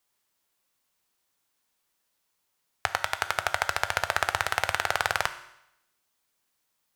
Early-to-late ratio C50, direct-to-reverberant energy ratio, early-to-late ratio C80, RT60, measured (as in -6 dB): 13.0 dB, 10.0 dB, 15.5 dB, 0.80 s